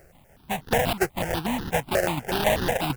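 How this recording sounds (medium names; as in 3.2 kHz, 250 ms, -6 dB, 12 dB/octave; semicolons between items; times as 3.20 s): aliases and images of a low sample rate 1.2 kHz, jitter 20%; tremolo saw down 6.9 Hz, depth 55%; a quantiser's noise floor 12-bit, dither triangular; notches that jump at a steady rate 8.2 Hz 960–2300 Hz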